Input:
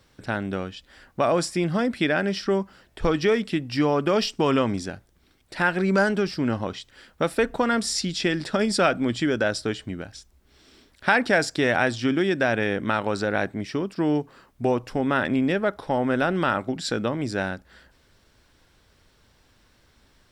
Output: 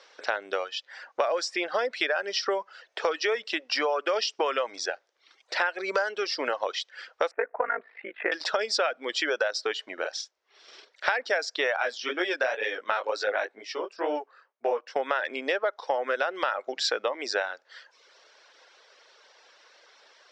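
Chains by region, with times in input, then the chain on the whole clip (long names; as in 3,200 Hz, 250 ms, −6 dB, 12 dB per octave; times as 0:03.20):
0:07.31–0:08.32: Butterworth low-pass 2,200 Hz 48 dB per octave + ring modulation 26 Hz
0:09.93–0:11.12: noise gate −55 dBFS, range −6 dB + double-tracking delay 47 ms −3 dB
0:11.76–0:14.96: chorus effect 2.1 Hz, delay 16.5 ms, depth 6.6 ms + multiband upward and downward expander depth 70%
whole clip: elliptic band-pass filter 490–5,900 Hz, stop band 50 dB; reverb reduction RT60 0.69 s; downward compressor 6 to 1, threshold −33 dBFS; level +9 dB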